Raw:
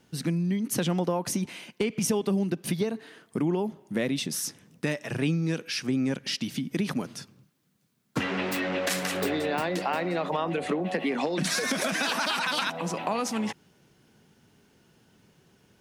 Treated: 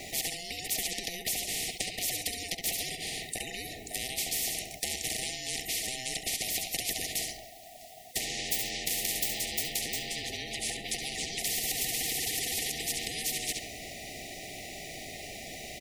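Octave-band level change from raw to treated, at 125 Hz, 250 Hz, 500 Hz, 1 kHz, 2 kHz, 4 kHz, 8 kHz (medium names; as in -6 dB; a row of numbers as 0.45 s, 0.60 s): -15.0 dB, -17.5 dB, -13.0 dB, -11.5 dB, -4.5 dB, +1.5 dB, +5.0 dB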